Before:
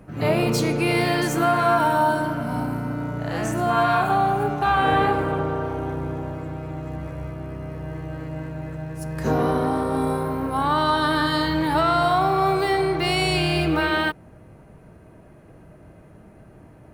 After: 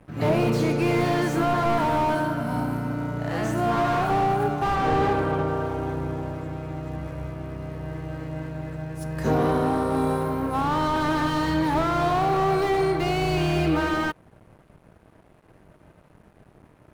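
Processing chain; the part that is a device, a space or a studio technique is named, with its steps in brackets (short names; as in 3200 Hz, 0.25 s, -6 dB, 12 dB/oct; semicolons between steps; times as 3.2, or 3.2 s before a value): early transistor amplifier (crossover distortion -49 dBFS; slew limiter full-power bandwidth 75 Hz); 4.75–5.48 high shelf 7800 Hz -5 dB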